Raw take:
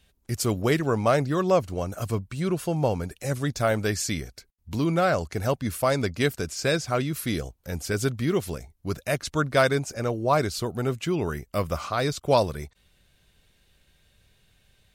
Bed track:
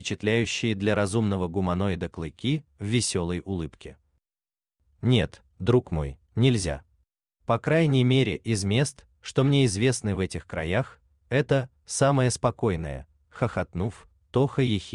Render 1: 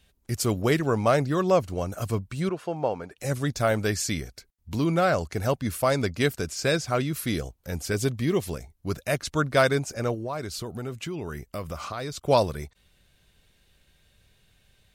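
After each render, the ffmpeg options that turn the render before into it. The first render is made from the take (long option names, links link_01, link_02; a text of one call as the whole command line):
ffmpeg -i in.wav -filter_complex "[0:a]asettb=1/sr,asplit=3[link_01][link_02][link_03];[link_01]atrim=end=2.494[link_04];[link_02]atrim=start=2.49:end=3.18,asetpts=PTS-STARTPTS,afade=type=in:duration=0.004:curve=qsin,afade=type=out:start_time=0.686:duration=0.004:curve=qsin,bandpass=frequency=920:width_type=q:width=0.53[link_05];[link_03]atrim=start=3.176[link_06];[link_04][link_05]acrossfade=duration=0.004:curve1=hsin:curve2=qsin[link_07];[link_07][link_06]acrossfade=duration=0.004:curve1=qsin:curve2=hsin,asettb=1/sr,asplit=3[link_08][link_09][link_10];[link_08]atrim=end=7.944[link_11];[link_09]atrim=start=7.94:end=8.47,asetpts=PTS-STARTPTS,afade=type=in:duration=0.004:curve=qsin,afade=type=out:start_time=0.526:duration=0.004:curve=qsin,bandreject=frequency=1400:width=5.2[link_12];[link_10]atrim=start=8.466[link_13];[link_11][link_12]acrossfade=duration=0.004:curve1=hsin:curve2=qsin[link_14];[link_14][link_13]acrossfade=duration=0.004:curve1=qsin:curve2=hsin,asettb=1/sr,asplit=3[link_15][link_16][link_17];[link_15]atrim=end=10.144[link_18];[link_16]atrim=start=10.14:end=12.24,asetpts=PTS-STARTPTS,afade=type=in:duration=0.004:curve=qsin,afade=type=out:start_time=2.096:duration=0.004:curve=qsin,acompressor=threshold=-31dB:ratio=3:attack=3.2:release=140:knee=1:detection=peak[link_19];[link_17]atrim=start=12.236[link_20];[link_18][link_19]acrossfade=duration=0.004:curve1=hsin:curve2=qsin[link_21];[link_21][link_20]acrossfade=duration=0.004:curve1=qsin:curve2=hsin" out.wav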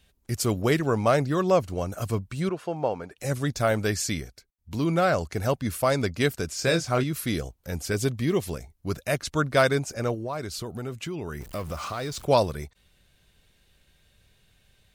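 ffmpeg -i in.wav -filter_complex "[0:a]asettb=1/sr,asplit=3[link_01][link_02][link_03];[link_01]atrim=end=6.524[link_04];[link_02]atrim=start=6.52:end=7.04,asetpts=PTS-STARTPTS,afade=type=in:duration=0.004:curve=qsin,afade=type=out:start_time=0.516:duration=0.004:curve=qsin,asplit=2[link_05][link_06];[link_06]adelay=24,volume=-7.5dB[link_07];[link_05][link_07]amix=inputs=2:normalize=0,atrim=end_sample=22932[link_08];[link_03]atrim=start=7.036[link_09];[link_04][link_08]acrossfade=duration=0.004:curve1=hsin:curve2=qsin[link_10];[link_10][link_09]acrossfade=duration=0.004:curve1=qsin:curve2=hsin,asettb=1/sr,asplit=3[link_11][link_12][link_13];[link_11]atrim=end=11.404[link_14];[link_12]atrim=start=11.4:end=12.25,asetpts=PTS-STARTPTS,afade=type=in:duration=0.004:curve=qsin,afade=type=out:start_time=0.846:duration=0.004:curve=qsin,aeval=exprs='val(0)+0.5*0.01*sgn(val(0))':channel_layout=same[link_15];[link_13]atrim=start=12.246[link_16];[link_14][link_15]acrossfade=duration=0.004:curve1=hsin:curve2=qsin[link_17];[link_17][link_16]acrossfade=duration=0.004:curve1=qsin:curve2=hsin,asplit=3[link_18][link_19][link_20];[link_18]atrim=end=4.47,asetpts=PTS-STARTPTS,afade=type=out:start_time=4.03:duration=0.44:curve=qsin:silence=0.334965[link_21];[link_19]atrim=start=4.47:end=4.55,asetpts=PTS-STARTPTS,volume=-9.5dB[link_22];[link_20]atrim=start=4.55,asetpts=PTS-STARTPTS,afade=type=in:duration=0.44:curve=qsin:silence=0.334965[link_23];[link_21][link_22][link_23]concat=n=3:v=0:a=1" out.wav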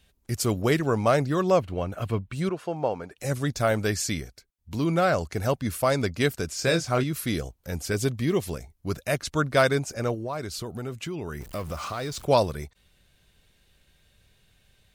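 ffmpeg -i in.wav -filter_complex "[0:a]asettb=1/sr,asplit=3[link_01][link_02][link_03];[link_01]atrim=end=1.604[link_04];[link_02]atrim=start=1.6:end=2.33,asetpts=PTS-STARTPTS,afade=type=in:duration=0.004:curve=qsin,afade=type=out:start_time=0.726:duration=0.004:curve=qsin,highshelf=frequency=4300:width_type=q:width=1.5:gain=-10[link_05];[link_03]atrim=start=2.326[link_06];[link_04][link_05]acrossfade=duration=0.004:curve1=hsin:curve2=qsin[link_07];[link_07][link_06]acrossfade=duration=0.004:curve1=qsin:curve2=hsin" out.wav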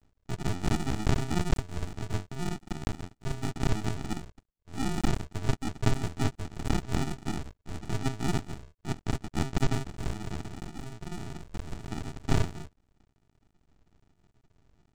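ffmpeg -i in.wav -af "aresample=16000,acrusher=samples=30:mix=1:aa=0.000001,aresample=44100,aeval=exprs='max(val(0),0)':channel_layout=same" out.wav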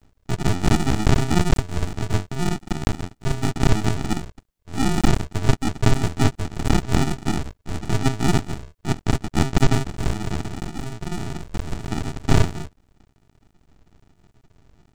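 ffmpeg -i in.wav -af "volume=10dB,alimiter=limit=-3dB:level=0:latency=1" out.wav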